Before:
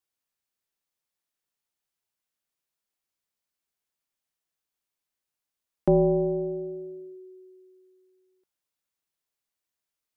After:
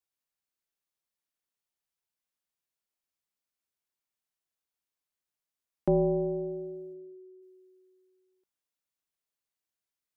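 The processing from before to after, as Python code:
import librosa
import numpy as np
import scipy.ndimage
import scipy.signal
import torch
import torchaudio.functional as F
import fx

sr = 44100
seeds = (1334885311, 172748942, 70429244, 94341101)

y = fx.lowpass(x, sr, hz=1000.0, slope=12, at=(6.93, 7.41), fade=0.02)
y = F.gain(torch.from_numpy(y), -4.5).numpy()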